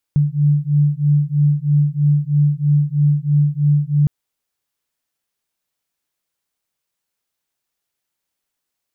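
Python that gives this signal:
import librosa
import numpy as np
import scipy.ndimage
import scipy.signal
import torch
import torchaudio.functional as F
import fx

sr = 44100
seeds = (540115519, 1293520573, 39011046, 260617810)

y = fx.two_tone_beats(sr, length_s=3.91, hz=145.0, beat_hz=3.1, level_db=-15.5)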